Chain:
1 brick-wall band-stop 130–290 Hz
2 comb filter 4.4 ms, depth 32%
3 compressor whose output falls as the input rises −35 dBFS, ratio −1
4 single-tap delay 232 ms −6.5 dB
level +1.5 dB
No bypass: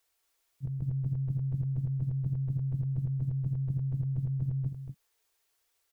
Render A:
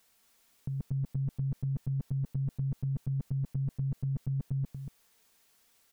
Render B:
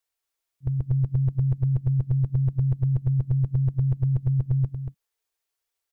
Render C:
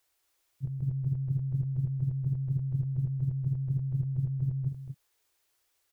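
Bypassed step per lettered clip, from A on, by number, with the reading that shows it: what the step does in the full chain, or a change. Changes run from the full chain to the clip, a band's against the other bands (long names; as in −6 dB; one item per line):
1, change in momentary loudness spread +1 LU
3, change in integrated loudness +8.0 LU
2, change in momentary loudness spread +2 LU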